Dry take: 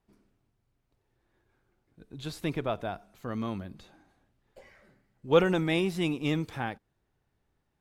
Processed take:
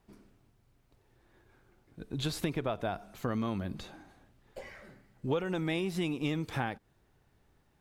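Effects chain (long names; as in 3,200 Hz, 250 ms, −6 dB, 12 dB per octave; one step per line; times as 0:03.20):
downward compressor 10 to 1, threshold −37 dBFS, peak gain reduction 21.5 dB
level +8 dB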